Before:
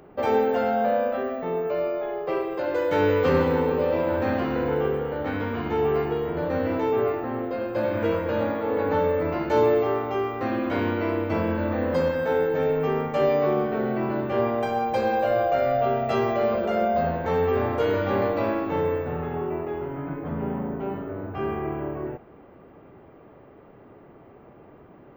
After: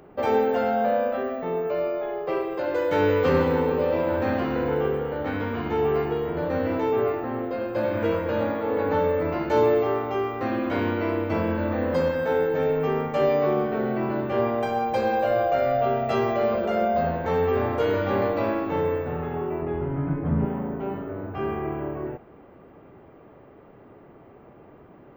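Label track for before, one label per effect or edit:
19.620000	20.450000	tone controls bass +10 dB, treble -9 dB

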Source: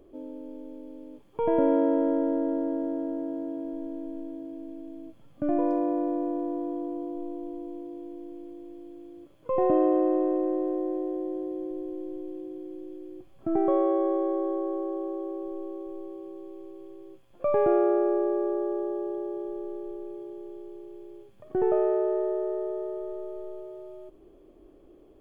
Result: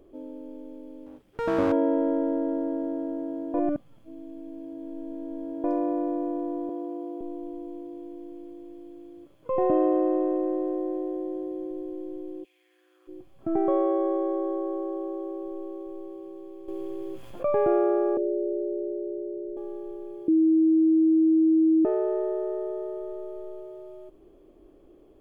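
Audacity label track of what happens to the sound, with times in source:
1.060000	1.720000	minimum comb delay 0.37 ms
3.540000	5.640000	reverse
6.690000	7.210000	steep high-pass 280 Hz
12.430000	13.070000	resonant high-pass 2600 Hz -> 1200 Hz, resonance Q 4.3
16.680000	17.510000	fast leveller amount 50%
18.170000	19.570000	elliptic low-pass 600 Hz
20.280000	21.850000	bleep 320 Hz -16.5 dBFS

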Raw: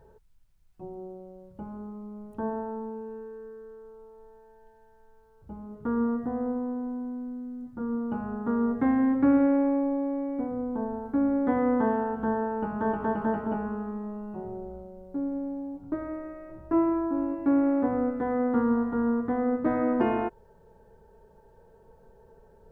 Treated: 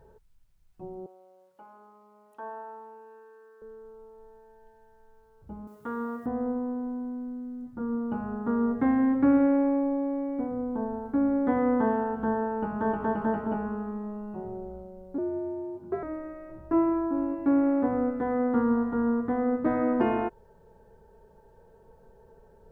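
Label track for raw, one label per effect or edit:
1.060000	3.620000	HPF 830 Hz
5.670000	6.260000	tilt +4 dB/oct
15.180000	16.030000	frequency shift +75 Hz

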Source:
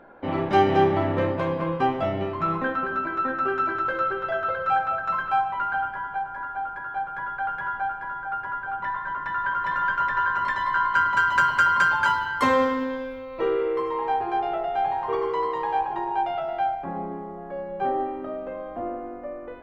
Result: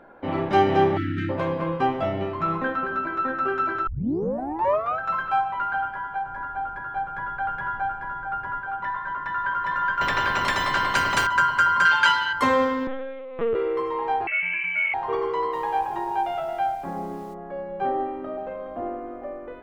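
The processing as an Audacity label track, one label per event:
0.970000	1.300000	spectral delete 370–1300 Hz
3.870000	3.870000	tape start 1.12 s
6.260000	8.610000	low shelf 220 Hz +8.5 dB
10.010000	11.270000	spectral compressor 2:1
11.850000	12.330000	weighting filter D
12.870000	13.550000	LPC vocoder at 8 kHz pitch kept
14.270000	14.940000	inverted band carrier 3000 Hz
15.520000	17.330000	added noise pink -56 dBFS
17.950000	18.450000	echo throw 0.42 s, feedback 60%, level -10.5 dB

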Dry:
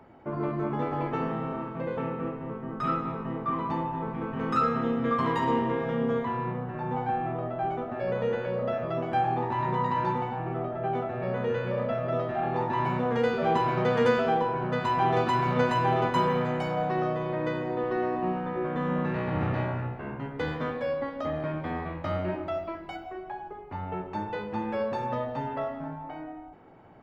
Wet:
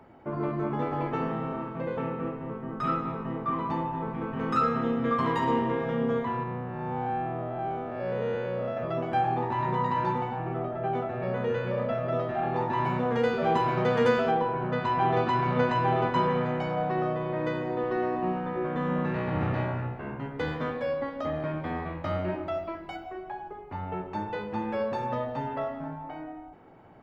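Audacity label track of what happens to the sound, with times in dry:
6.430000	8.770000	time blur width 0.155 s
14.310000	17.360000	air absorption 110 m

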